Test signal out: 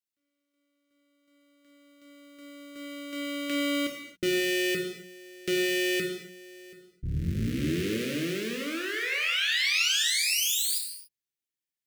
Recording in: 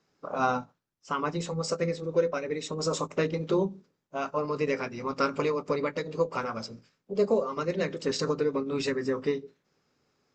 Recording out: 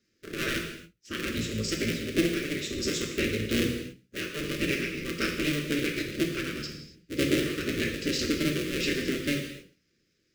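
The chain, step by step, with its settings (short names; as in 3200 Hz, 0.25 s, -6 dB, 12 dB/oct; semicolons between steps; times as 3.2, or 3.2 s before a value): cycle switcher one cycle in 3, inverted; dynamic EQ 2800 Hz, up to +5 dB, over -49 dBFS, Q 1.6; Chebyshev band-stop 380–1900 Hz, order 2; notches 60/120/180 Hz; non-linear reverb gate 0.31 s falling, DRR 1 dB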